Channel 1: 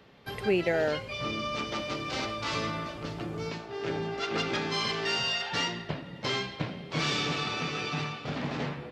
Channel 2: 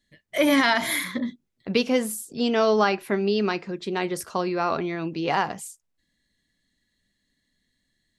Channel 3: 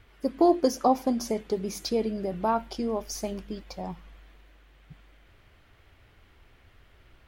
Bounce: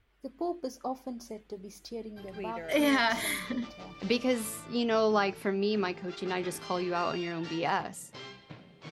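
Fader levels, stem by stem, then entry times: -14.5 dB, -6.0 dB, -13.0 dB; 1.90 s, 2.35 s, 0.00 s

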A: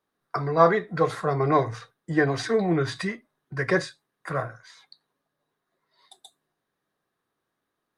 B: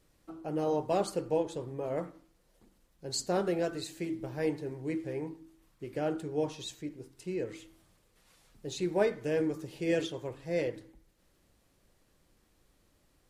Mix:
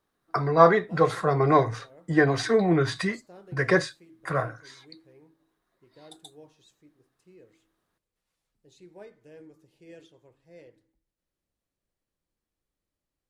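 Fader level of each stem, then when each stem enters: +1.5 dB, -19.0 dB; 0.00 s, 0.00 s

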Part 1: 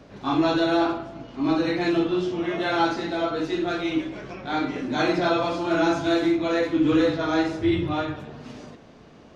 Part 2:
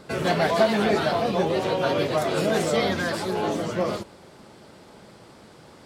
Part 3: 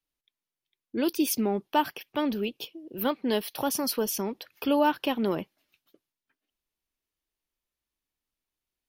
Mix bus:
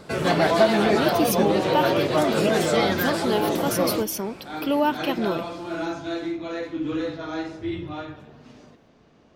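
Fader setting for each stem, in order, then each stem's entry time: -7.5 dB, +1.5 dB, +1.5 dB; 0.00 s, 0.00 s, 0.00 s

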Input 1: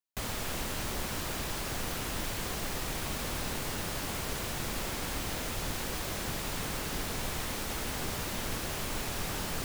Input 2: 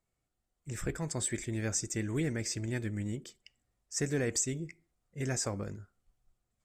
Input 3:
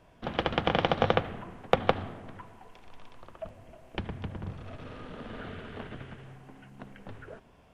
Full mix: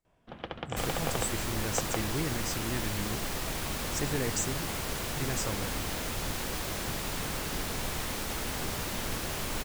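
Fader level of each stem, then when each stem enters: +1.0 dB, -1.5 dB, -10.5 dB; 0.60 s, 0.00 s, 0.05 s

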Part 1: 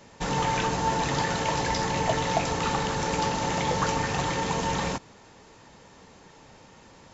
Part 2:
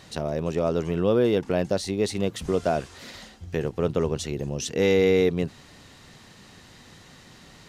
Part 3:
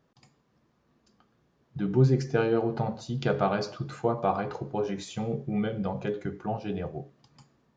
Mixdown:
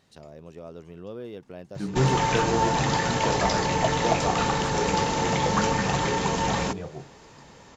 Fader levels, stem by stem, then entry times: +2.0 dB, -17.0 dB, -2.0 dB; 1.75 s, 0.00 s, 0.00 s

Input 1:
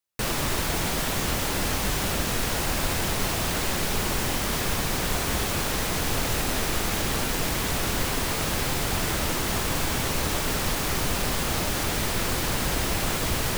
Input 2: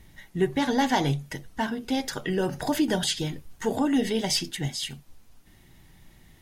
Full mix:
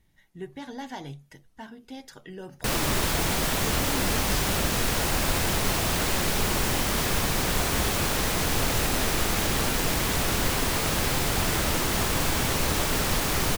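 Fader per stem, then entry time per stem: +1.0 dB, -14.0 dB; 2.45 s, 0.00 s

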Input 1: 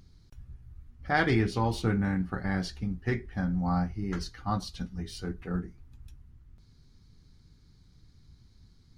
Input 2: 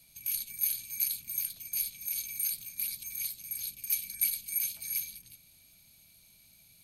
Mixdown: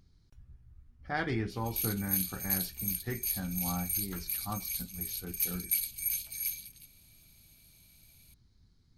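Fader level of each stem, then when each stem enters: -7.5 dB, -1.0 dB; 0.00 s, 1.50 s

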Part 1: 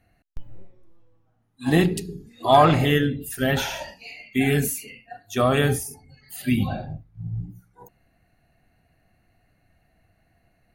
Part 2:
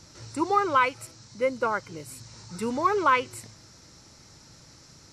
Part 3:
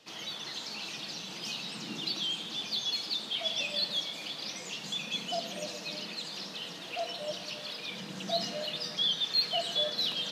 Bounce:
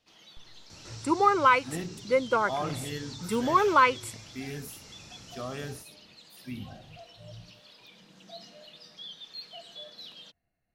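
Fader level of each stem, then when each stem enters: -17.5 dB, +1.0 dB, -14.5 dB; 0.00 s, 0.70 s, 0.00 s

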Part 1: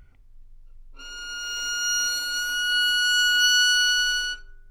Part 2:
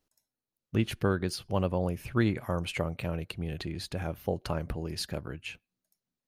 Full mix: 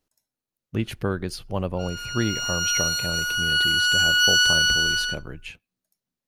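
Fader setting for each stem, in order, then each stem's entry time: +1.0 dB, +1.5 dB; 0.80 s, 0.00 s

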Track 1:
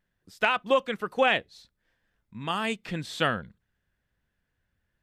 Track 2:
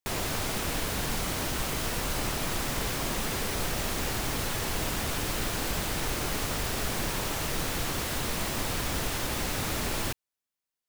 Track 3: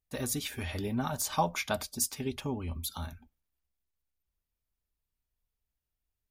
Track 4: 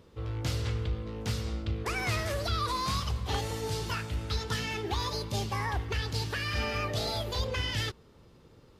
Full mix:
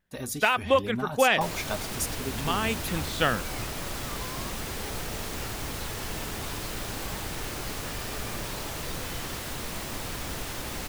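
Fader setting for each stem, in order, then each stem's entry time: +1.0 dB, -4.0 dB, -1.0 dB, -12.5 dB; 0.00 s, 1.35 s, 0.00 s, 1.50 s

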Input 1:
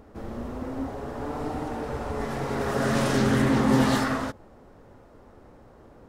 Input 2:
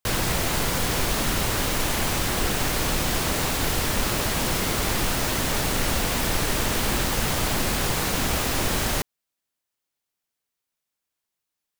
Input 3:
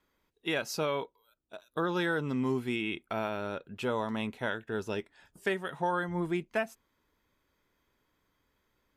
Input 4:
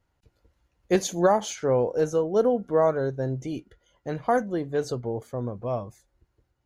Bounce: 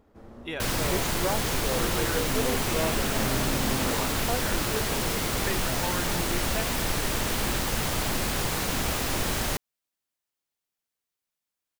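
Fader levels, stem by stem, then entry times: -11.0 dB, -3.5 dB, -3.5 dB, -10.0 dB; 0.00 s, 0.55 s, 0.00 s, 0.00 s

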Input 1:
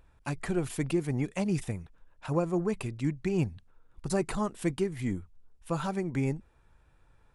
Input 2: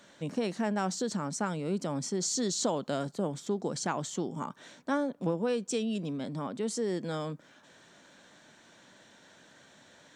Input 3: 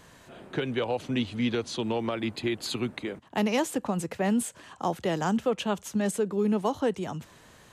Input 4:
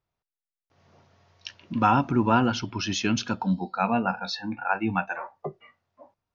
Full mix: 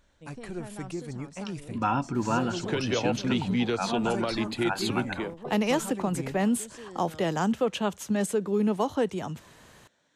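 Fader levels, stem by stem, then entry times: -7.0 dB, -13.0 dB, +0.5 dB, -6.0 dB; 0.00 s, 0.00 s, 2.15 s, 0.00 s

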